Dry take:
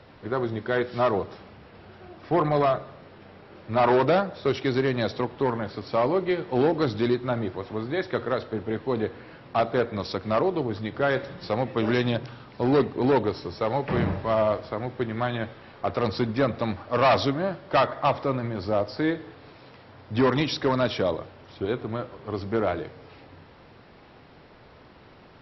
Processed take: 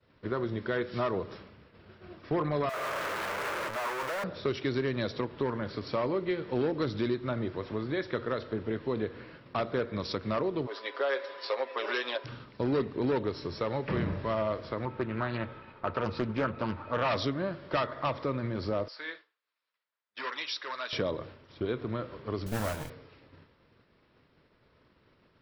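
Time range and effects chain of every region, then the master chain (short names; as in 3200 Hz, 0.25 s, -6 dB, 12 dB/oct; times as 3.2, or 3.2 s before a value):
2.69–4.24 infinite clipping + three-band isolator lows -21 dB, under 540 Hz, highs -14 dB, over 2100 Hz
10.65–12.24 HPF 470 Hz 24 dB/oct + comb 7.4 ms, depth 78% + whine 1000 Hz -47 dBFS
14.85–17.08 air absorption 220 m + small resonant body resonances 900/1300/2500 Hz, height 15 dB, ringing for 90 ms + Doppler distortion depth 0.37 ms
18.88–20.93 flange 1.9 Hz, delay 1.8 ms, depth 4.9 ms, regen -61% + HPF 1100 Hz
22.46–22.9 minimum comb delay 1.3 ms + modulation noise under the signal 13 dB + Doppler distortion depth 0.16 ms
whole clip: expander -41 dBFS; bell 770 Hz -9.5 dB 0.36 oct; compressor 2:1, threshold -31 dBFS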